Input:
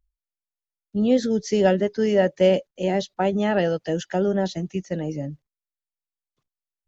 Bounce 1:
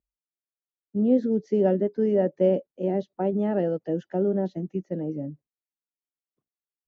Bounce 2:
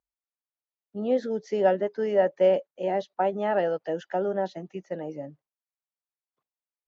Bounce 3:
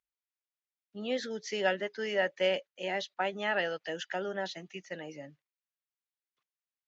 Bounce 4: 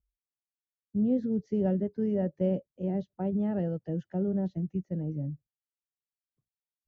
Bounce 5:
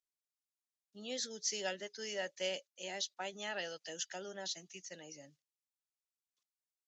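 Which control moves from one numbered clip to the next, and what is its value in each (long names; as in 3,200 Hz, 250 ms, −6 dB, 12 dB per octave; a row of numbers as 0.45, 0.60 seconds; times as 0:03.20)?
resonant band-pass, frequency: 300, 820, 2,100, 110, 6,600 Hertz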